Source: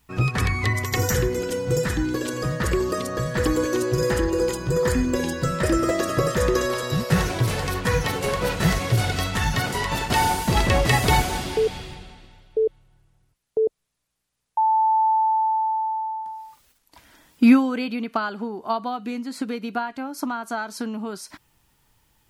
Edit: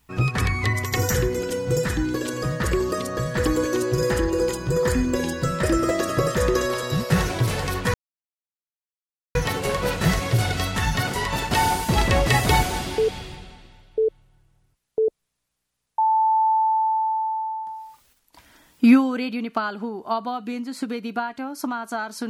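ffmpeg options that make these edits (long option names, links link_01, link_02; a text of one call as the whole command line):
ffmpeg -i in.wav -filter_complex "[0:a]asplit=2[link_01][link_02];[link_01]atrim=end=7.94,asetpts=PTS-STARTPTS,afade=type=out:start_time=7.936:duration=0.004:curve=hsin,apad=pad_dur=1.41[link_03];[link_02]atrim=start=7.94,asetpts=PTS-STARTPTS,afade=type=in:duration=0.004:curve=hsin[link_04];[link_03][link_04]concat=n=2:v=0:a=1" out.wav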